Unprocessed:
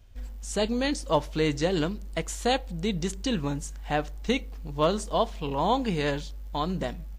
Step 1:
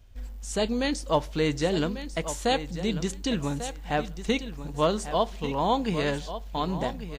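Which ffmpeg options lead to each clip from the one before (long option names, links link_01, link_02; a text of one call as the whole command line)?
ffmpeg -i in.wav -af "aecho=1:1:1144|2288:0.266|0.0426" out.wav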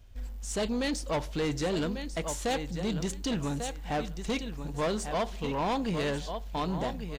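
ffmpeg -i in.wav -af "asoftclip=type=tanh:threshold=-25dB" out.wav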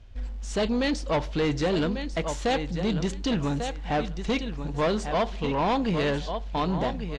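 ffmpeg -i in.wav -af "lowpass=4800,volume=5dB" out.wav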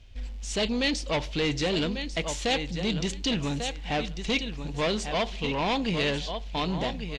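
ffmpeg -i in.wav -af "highshelf=frequency=1900:width_type=q:width=1.5:gain=6.5,volume=-2.5dB" out.wav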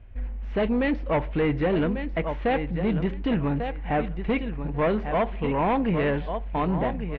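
ffmpeg -i in.wav -af "lowpass=frequency=1900:width=0.5412,lowpass=frequency=1900:width=1.3066,volume=4.5dB" out.wav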